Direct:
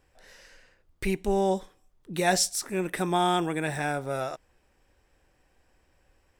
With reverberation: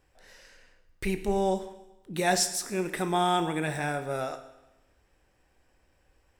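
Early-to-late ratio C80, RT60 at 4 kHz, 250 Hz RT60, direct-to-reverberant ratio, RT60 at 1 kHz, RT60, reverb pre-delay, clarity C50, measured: 13.5 dB, 0.95 s, 1.0 s, 9.5 dB, 1.0 s, 1.0 s, 19 ms, 11.5 dB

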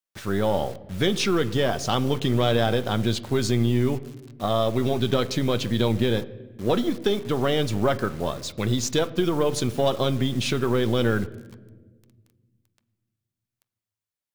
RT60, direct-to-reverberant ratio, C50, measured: 1.3 s, 10.0 dB, 18.0 dB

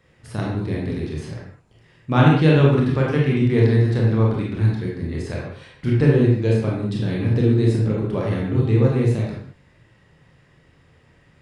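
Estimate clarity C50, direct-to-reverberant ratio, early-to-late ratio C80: 1.0 dB, −3.5 dB, 4.5 dB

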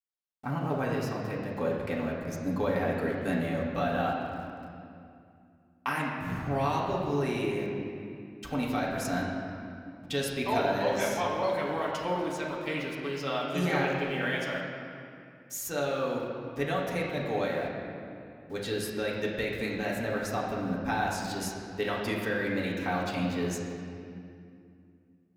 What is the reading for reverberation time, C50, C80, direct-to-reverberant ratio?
2.5 s, 1.0 dB, 2.5 dB, −5.0 dB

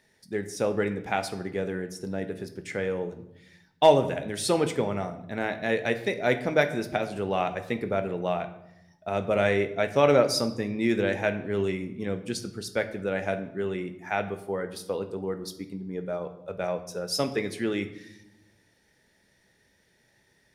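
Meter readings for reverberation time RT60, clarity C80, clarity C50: 0.85 s, 15.0 dB, 12.5 dB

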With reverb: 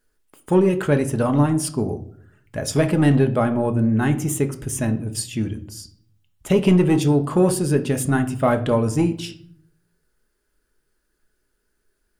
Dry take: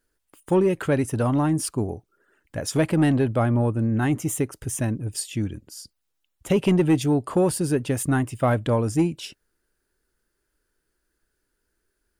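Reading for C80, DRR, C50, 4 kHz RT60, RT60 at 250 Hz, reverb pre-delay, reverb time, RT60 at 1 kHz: 18.5 dB, 6.5 dB, 14.0 dB, 0.40 s, 0.85 s, 5 ms, 0.60 s, 0.50 s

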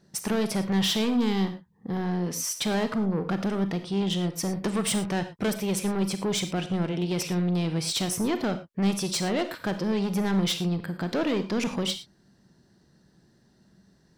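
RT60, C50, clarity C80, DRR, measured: non-exponential decay, 11.5 dB, 14.5 dB, 9.0 dB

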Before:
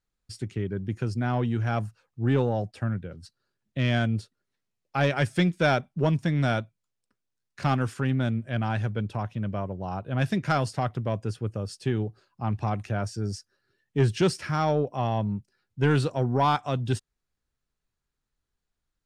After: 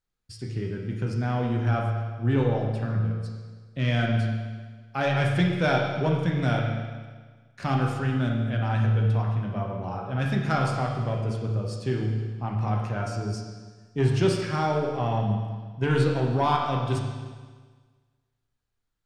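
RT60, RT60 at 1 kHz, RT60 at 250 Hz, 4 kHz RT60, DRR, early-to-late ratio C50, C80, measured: 1.5 s, 1.5 s, 1.5 s, 1.5 s, −1.0 dB, 2.5 dB, 4.0 dB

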